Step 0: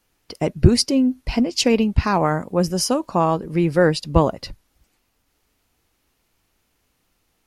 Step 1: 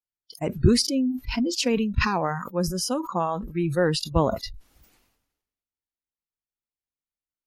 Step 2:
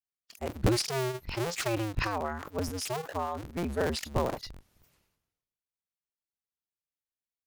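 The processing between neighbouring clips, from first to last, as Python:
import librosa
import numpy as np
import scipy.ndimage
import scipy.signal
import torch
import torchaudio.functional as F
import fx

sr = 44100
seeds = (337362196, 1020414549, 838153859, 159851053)

y1 = fx.noise_reduce_blind(x, sr, reduce_db=29)
y1 = fx.sustainer(y1, sr, db_per_s=57.0)
y1 = F.gain(torch.from_numpy(y1), -6.5).numpy()
y2 = fx.cycle_switch(y1, sr, every=2, mode='inverted')
y2 = F.gain(torch.from_numpy(y2), -7.5).numpy()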